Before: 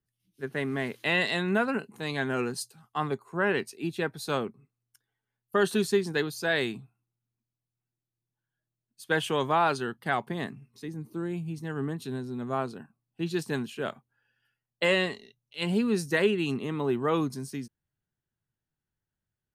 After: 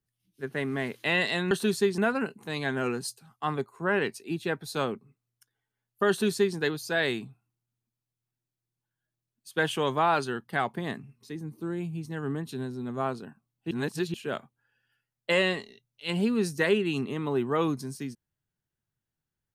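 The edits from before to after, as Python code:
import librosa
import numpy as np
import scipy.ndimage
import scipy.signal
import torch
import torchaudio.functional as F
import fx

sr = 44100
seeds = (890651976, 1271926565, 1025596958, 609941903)

y = fx.edit(x, sr, fx.duplicate(start_s=5.62, length_s=0.47, to_s=1.51),
    fx.reverse_span(start_s=13.24, length_s=0.43), tone=tone)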